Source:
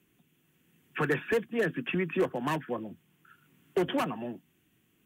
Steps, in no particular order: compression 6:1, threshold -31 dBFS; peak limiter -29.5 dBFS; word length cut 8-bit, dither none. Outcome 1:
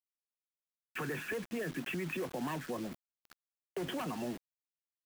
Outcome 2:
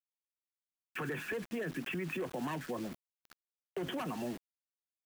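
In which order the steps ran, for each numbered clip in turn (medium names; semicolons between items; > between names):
peak limiter > word length cut > compression; word length cut > peak limiter > compression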